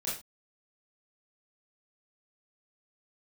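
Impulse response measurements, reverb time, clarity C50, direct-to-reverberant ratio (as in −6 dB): non-exponential decay, 4.0 dB, −8.0 dB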